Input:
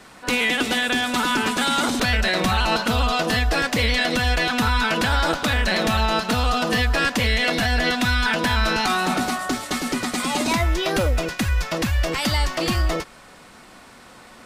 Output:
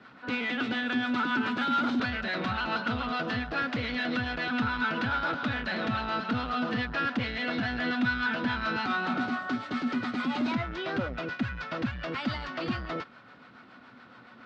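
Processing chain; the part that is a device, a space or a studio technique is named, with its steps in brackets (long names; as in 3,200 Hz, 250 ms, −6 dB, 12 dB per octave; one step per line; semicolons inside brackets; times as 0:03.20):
guitar amplifier with harmonic tremolo (two-band tremolo in antiphase 7.1 Hz, depth 50%, crossover 530 Hz; soft clipping −20 dBFS, distortion −14 dB; loudspeaker in its box 100–4,100 Hz, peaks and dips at 120 Hz +9 dB, 250 Hz +9 dB, 1,400 Hz +9 dB)
level −7 dB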